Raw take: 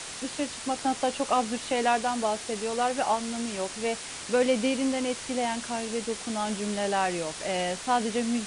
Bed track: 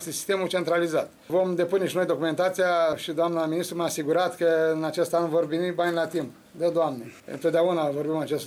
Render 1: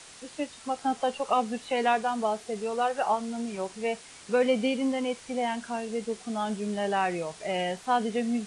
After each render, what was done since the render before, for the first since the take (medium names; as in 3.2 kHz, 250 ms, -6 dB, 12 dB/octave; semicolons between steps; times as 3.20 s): noise print and reduce 10 dB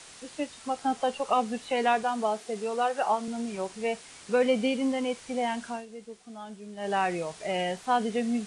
2.03–3.28 s: high-pass 160 Hz; 5.68–6.94 s: dip -11.5 dB, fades 0.18 s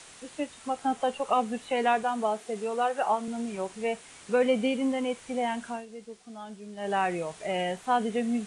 dynamic bell 4.9 kHz, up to -7 dB, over -56 dBFS, Q 1.9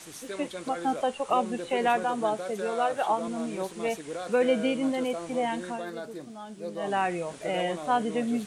add bed track -13 dB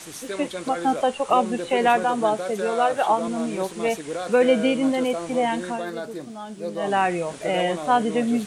trim +6 dB